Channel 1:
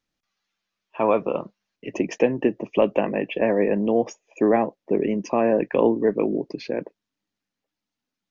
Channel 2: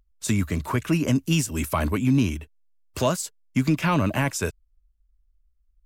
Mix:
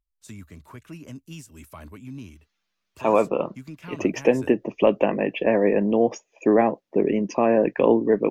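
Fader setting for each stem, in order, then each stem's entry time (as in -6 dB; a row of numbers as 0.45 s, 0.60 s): +1.0 dB, -18.0 dB; 2.05 s, 0.00 s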